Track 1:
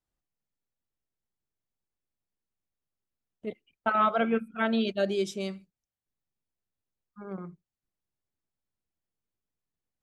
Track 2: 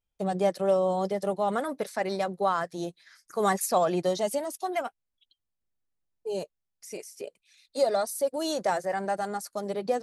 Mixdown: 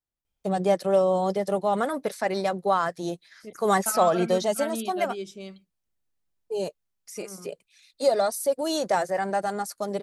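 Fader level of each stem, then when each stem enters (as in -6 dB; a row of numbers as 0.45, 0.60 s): -6.5, +3.0 dB; 0.00, 0.25 s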